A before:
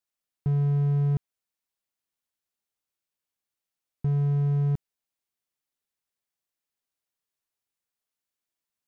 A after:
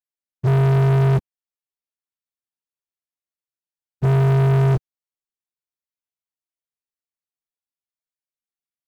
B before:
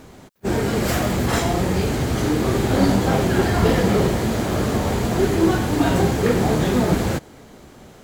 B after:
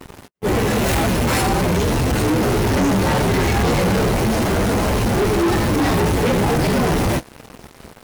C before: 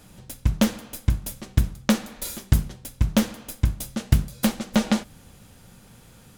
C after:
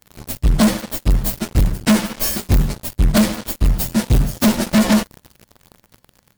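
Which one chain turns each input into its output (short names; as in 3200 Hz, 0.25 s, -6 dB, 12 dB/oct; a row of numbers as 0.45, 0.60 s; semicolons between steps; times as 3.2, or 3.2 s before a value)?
inharmonic rescaling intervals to 111%; sample leveller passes 5; match loudness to -18 LUFS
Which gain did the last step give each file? +4.5, -6.0, 0.0 dB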